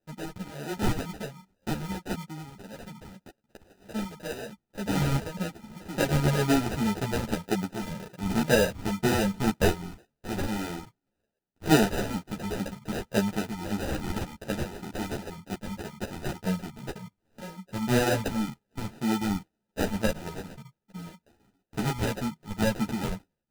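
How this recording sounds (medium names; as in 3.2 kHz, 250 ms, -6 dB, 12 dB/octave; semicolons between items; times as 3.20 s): phasing stages 12, 1.9 Hz, lowest notch 440–4600 Hz; aliases and images of a low sample rate 1.1 kHz, jitter 0%; a shimmering, thickened sound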